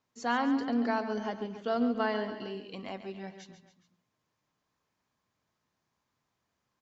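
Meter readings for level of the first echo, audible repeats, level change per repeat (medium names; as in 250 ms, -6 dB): -11.0 dB, 3, -5.0 dB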